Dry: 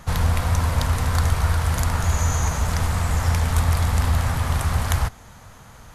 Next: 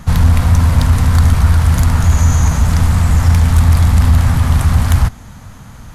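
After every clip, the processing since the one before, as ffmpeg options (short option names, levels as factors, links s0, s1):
-af "aeval=exprs='0.531*sin(PI/2*1.58*val(0)/0.531)':c=same,lowshelf=f=330:t=q:w=1.5:g=6,volume=0.75"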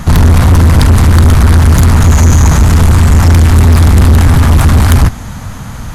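-af "acontrast=75,asoftclip=type=tanh:threshold=0.501,volume=1.78"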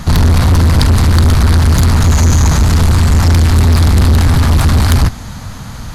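-af "equalizer=f=4400:t=o:w=0.63:g=7,volume=0.668"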